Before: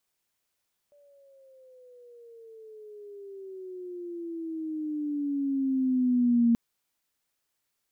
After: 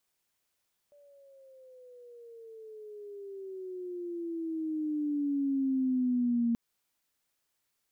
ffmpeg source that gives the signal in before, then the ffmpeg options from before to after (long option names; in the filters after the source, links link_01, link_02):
-f lavfi -i "aevalsrc='pow(10,(-18+38*(t/5.63-1))/20)*sin(2*PI*583*5.63/(-16*log(2)/12)*(exp(-16*log(2)/12*t/5.63)-1))':duration=5.63:sample_rate=44100"
-af "acompressor=threshold=-27dB:ratio=6"